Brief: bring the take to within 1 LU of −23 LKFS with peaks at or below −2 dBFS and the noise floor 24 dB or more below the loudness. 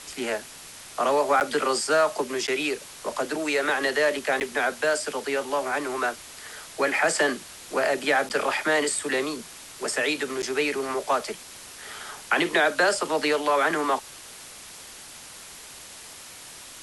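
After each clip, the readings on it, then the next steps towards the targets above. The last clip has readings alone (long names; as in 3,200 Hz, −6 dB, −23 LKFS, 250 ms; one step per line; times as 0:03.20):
number of dropouts 5; longest dropout 9.2 ms; background noise floor −44 dBFS; target noise floor −49 dBFS; integrated loudness −25.0 LKFS; sample peak −10.0 dBFS; target loudness −23.0 LKFS
→ repair the gap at 0:01.40/0:02.47/0:04.40/0:08.29/0:10.42, 9.2 ms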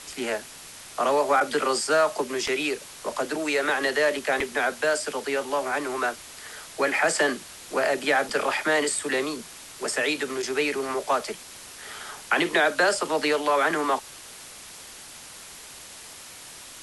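number of dropouts 0; background noise floor −44 dBFS; target noise floor −49 dBFS
→ broadband denoise 6 dB, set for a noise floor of −44 dBFS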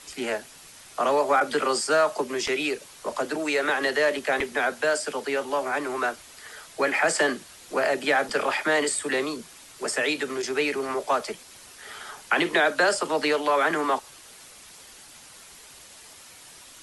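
background noise floor −48 dBFS; target noise floor −49 dBFS
→ broadband denoise 6 dB, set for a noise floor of −48 dBFS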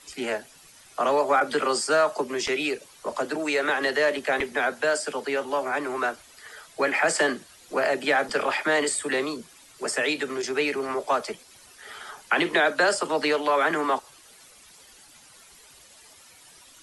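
background noise floor −52 dBFS; integrated loudness −25.0 LKFS; sample peak −10.5 dBFS; target loudness −23.0 LKFS
→ level +2 dB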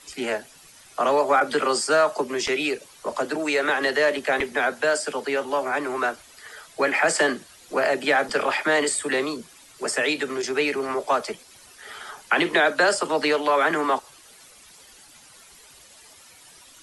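integrated loudness −23.0 LKFS; sample peak −8.5 dBFS; background noise floor −50 dBFS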